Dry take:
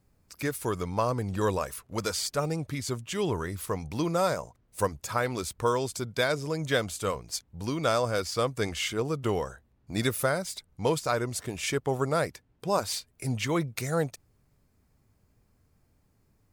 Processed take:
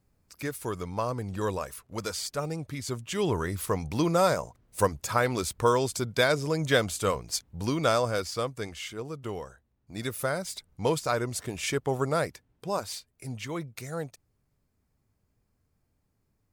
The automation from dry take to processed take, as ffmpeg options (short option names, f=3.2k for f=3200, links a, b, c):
-af "volume=10.5dB,afade=t=in:st=2.73:d=0.78:silence=0.501187,afade=t=out:st=7.66:d=1.05:silence=0.298538,afade=t=in:st=9.99:d=0.54:silence=0.421697,afade=t=out:st=12.12:d=0.99:silence=0.446684"